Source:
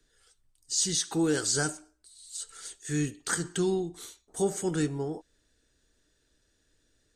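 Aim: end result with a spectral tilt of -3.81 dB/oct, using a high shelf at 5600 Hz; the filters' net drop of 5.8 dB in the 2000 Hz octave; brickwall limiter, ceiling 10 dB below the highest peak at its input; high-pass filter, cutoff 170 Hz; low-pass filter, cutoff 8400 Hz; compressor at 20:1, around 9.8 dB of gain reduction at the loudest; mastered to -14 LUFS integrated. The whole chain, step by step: HPF 170 Hz; LPF 8400 Hz; bell 2000 Hz -8 dB; high shelf 5600 Hz -5.5 dB; compressor 20:1, threshold -33 dBFS; gain +29 dB; limiter -4 dBFS

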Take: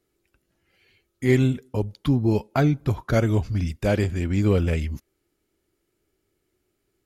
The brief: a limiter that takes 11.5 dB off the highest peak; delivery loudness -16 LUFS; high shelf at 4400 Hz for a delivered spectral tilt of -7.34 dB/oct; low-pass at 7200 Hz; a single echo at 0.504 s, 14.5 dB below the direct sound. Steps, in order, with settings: LPF 7200 Hz; high shelf 4400 Hz +4 dB; limiter -19 dBFS; echo 0.504 s -14.5 dB; gain +12.5 dB

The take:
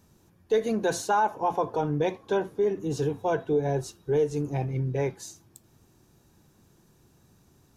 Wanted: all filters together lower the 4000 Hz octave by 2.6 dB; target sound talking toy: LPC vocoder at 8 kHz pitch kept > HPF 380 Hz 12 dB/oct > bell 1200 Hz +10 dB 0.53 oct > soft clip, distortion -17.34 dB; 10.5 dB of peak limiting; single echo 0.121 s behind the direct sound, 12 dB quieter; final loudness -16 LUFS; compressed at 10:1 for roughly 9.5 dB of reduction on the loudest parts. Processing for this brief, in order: bell 4000 Hz -3.5 dB; compressor 10:1, threshold -29 dBFS; limiter -31 dBFS; echo 0.121 s -12 dB; LPC vocoder at 8 kHz pitch kept; HPF 380 Hz 12 dB/oct; bell 1200 Hz +10 dB 0.53 oct; soft clip -31.5 dBFS; gain +27 dB

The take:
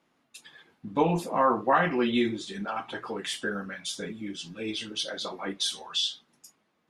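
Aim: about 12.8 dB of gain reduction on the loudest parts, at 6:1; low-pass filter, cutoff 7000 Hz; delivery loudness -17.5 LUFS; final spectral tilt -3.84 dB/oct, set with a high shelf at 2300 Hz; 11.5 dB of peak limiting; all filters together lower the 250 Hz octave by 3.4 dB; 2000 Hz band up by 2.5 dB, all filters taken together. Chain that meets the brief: LPF 7000 Hz; bell 250 Hz -4.5 dB; bell 2000 Hz +6 dB; high shelf 2300 Hz -5.5 dB; compressor 6:1, threshold -32 dBFS; gain +25 dB; limiter -8.5 dBFS

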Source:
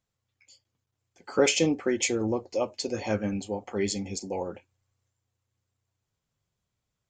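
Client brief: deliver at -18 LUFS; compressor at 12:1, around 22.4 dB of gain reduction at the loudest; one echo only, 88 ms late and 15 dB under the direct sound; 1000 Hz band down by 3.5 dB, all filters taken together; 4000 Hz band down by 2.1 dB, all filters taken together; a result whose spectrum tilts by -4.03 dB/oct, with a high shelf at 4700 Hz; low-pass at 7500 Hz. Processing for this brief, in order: LPF 7500 Hz; bell 1000 Hz -5 dB; bell 4000 Hz -5 dB; high shelf 4700 Hz +5 dB; compressor 12:1, threshold -40 dBFS; echo 88 ms -15 dB; gain +26.5 dB

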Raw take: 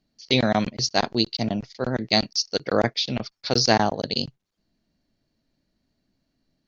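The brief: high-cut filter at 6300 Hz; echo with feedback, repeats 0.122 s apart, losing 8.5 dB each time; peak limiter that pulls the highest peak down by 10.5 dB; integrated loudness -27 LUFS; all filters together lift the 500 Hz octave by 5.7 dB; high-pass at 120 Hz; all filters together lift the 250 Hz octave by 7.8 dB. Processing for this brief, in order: HPF 120 Hz; LPF 6300 Hz; bell 250 Hz +8.5 dB; bell 500 Hz +5 dB; limiter -10.5 dBFS; feedback echo 0.122 s, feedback 38%, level -8.5 dB; gain -4.5 dB

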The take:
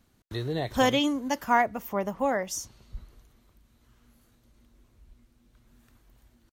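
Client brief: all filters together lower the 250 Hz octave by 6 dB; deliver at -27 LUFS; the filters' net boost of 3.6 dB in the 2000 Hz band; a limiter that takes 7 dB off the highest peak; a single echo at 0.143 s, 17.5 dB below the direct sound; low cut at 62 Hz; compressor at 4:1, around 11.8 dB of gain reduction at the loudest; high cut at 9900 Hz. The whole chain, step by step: HPF 62 Hz; LPF 9900 Hz; bell 250 Hz -7 dB; bell 2000 Hz +4.5 dB; compressor 4:1, threshold -30 dBFS; limiter -26.5 dBFS; echo 0.143 s -17.5 dB; gain +10.5 dB

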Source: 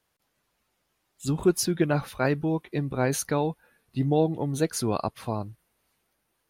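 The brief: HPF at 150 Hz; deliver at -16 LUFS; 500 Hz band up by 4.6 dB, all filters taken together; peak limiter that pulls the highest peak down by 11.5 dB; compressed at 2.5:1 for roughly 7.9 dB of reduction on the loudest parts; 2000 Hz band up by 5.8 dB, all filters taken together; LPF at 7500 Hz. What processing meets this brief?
HPF 150 Hz; LPF 7500 Hz; bell 500 Hz +5.5 dB; bell 2000 Hz +7.5 dB; compressor 2.5:1, threshold -25 dBFS; gain +18.5 dB; limiter -4.5 dBFS

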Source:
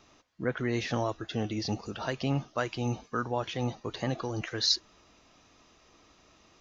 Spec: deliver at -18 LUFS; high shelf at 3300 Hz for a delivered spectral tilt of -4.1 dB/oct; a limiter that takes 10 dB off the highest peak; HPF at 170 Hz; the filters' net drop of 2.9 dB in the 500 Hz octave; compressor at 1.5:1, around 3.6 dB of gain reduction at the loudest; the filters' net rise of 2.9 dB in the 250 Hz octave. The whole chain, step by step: HPF 170 Hz; bell 250 Hz +6 dB; bell 500 Hz -5.5 dB; high shelf 3300 Hz -7 dB; compressor 1.5:1, threshold -35 dBFS; gain +22.5 dB; limiter -8 dBFS

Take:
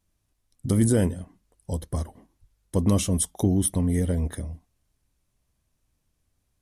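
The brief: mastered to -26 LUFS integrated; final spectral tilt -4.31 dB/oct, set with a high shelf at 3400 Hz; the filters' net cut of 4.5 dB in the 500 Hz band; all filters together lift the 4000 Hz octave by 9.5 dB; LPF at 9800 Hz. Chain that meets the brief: LPF 9800 Hz; bell 500 Hz -6 dB; high shelf 3400 Hz +8.5 dB; bell 4000 Hz +6.5 dB; gain -2 dB

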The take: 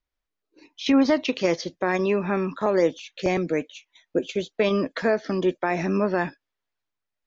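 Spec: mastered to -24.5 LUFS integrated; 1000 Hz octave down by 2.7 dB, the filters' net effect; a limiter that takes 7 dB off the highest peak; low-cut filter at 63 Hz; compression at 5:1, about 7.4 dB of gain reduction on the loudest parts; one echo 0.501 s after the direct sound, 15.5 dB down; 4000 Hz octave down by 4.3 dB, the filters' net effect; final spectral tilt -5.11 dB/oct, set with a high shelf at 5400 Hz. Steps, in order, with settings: HPF 63 Hz; bell 1000 Hz -3.5 dB; bell 4000 Hz -7 dB; high shelf 5400 Hz +3.5 dB; compressor 5:1, threshold -24 dBFS; limiter -20 dBFS; echo 0.501 s -15.5 dB; gain +6.5 dB

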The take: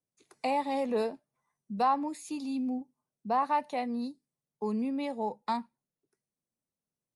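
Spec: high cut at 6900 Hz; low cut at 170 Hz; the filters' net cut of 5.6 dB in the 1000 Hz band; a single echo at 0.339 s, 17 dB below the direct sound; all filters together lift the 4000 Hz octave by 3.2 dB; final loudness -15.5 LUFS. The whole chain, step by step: HPF 170 Hz; LPF 6900 Hz; bell 1000 Hz -7.5 dB; bell 4000 Hz +4.5 dB; echo 0.339 s -17 dB; gain +19.5 dB

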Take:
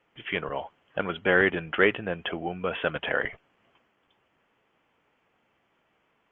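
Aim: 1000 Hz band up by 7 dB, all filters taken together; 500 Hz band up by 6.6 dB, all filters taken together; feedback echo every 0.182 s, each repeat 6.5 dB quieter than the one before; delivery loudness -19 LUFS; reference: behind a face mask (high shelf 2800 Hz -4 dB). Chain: bell 500 Hz +6 dB; bell 1000 Hz +9 dB; high shelf 2800 Hz -4 dB; feedback echo 0.182 s, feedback 47%, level -6.5 dB; gain +3 dB

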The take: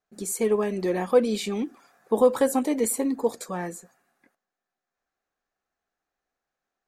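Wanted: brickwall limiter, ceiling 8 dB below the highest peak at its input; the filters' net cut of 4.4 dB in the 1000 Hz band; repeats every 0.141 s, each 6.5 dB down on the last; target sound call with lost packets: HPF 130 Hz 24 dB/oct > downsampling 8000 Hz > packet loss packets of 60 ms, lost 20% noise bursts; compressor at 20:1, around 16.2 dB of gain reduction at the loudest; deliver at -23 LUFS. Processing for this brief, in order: bell 1000 Hz -6 dB; compressor 20:1, threshold -30 dBFS; limiter -28 dBFS; HPF 130 Hz 24 dB/oct; feedback echo 0.141 s, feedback 47%, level -6.5 dB; downsampling 8000 Hz; packet loss packets of 60 ms, lost 20% noise bursts; gain +14.5 dB

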